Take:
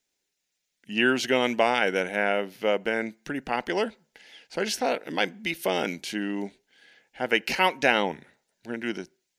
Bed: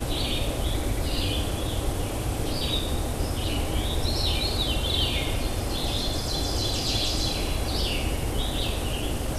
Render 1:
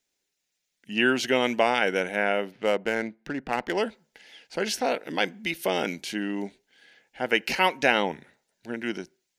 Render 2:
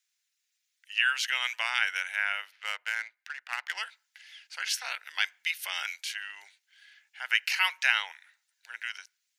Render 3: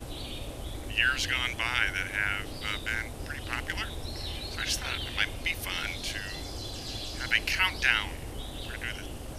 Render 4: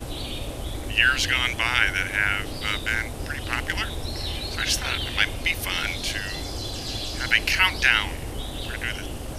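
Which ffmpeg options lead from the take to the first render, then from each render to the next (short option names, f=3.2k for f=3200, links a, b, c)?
-filter_complex "[0:a]asplit=3[a][b][c];[a]afade=t=out:st=2.5:d=0.02[d];[b]adynamicsmooth=sensitivity=5:basefreq=1.9k,afade=t=in:st=2.5:d=0.02,afade=t=out:st=3.76:d=0.02[e];[c]afade=t=in:st=3.76:d=0.02[f];[d][e][f]amix=inputs=3:normalize=0"
-af "highpass=f=1.3k:w=0.5412,highpass=f=1.3k:w=1.3066"
-filter_complex "[1:a]volume=-11.5dB[a];[0:a][a]amix=inputs=2:normalize=0"
-af "volume=6.5dB,alimiter=limit=-3dB:level=0:latency=1"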